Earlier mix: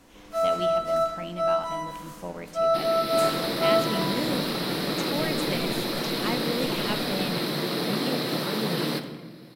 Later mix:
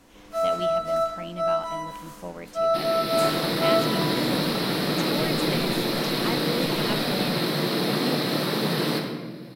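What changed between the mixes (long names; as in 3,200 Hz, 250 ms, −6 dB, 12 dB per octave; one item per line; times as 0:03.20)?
speech: send off
second sound: send +8.0 dB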